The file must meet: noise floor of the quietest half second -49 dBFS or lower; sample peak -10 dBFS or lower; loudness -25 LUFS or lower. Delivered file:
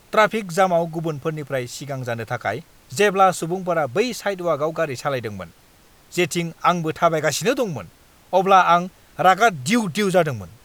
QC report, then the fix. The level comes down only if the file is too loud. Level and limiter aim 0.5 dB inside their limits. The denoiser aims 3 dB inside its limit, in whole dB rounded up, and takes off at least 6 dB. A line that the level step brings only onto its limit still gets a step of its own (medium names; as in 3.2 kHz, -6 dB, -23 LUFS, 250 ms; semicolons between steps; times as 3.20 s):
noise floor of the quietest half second -52 dBFS: pass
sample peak -3.0 dBFS: fail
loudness -20.5 LUFS: fail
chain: trim -5 dB; peak limiter -10.5 dBFS